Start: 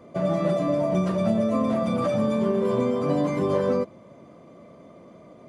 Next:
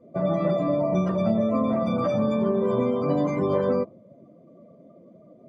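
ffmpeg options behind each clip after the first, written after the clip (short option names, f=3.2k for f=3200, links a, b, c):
-af "afftdn=nr=19:nf=-41,bandreject=f=1.7k:w=27"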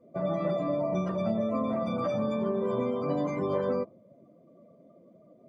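-af "lowshelf=f=410:g=-3.5,volume=-4dB"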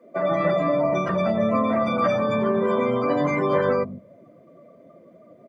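-filter_complex "[0:a]equalizer=f=1.8k:t=o:w=1.1:g=11,acrossover=split=200[a][b];[a]adelay=150[c];[c][b]amix=inputs=2:normalize=0,volume=7dB"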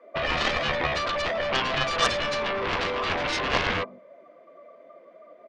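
-af "highpass=720,lowpass=3.4k,aeval=exprs='0.237*(cos(1*acos(clip(val(0)/0.237,-1,1)))-cos(1*PI/2))+0.106*(cos(7*acos(clip(val(0)/0.237,-1,1)))-cos(7*PI/2))':c=same"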